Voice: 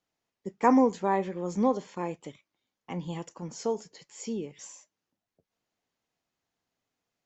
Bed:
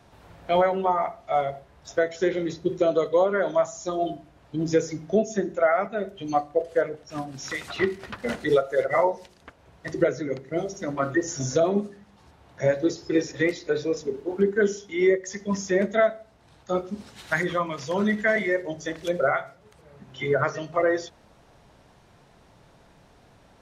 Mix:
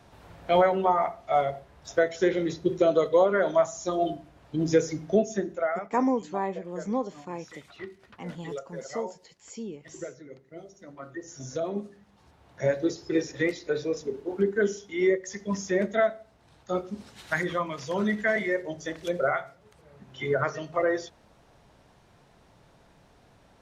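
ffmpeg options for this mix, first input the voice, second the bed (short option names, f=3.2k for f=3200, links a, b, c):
-filter_complex "[0:a]adelay=5300,volume=-3.5dB[a];[1:a]volume=13.5dB,afade=t=out:st=5.08:d=0.9:silence=0.149624,afade=t=in:st=11.1:d=1.5:silence=0.211349[b];[a][b]amix=inputs=2:normalize=0"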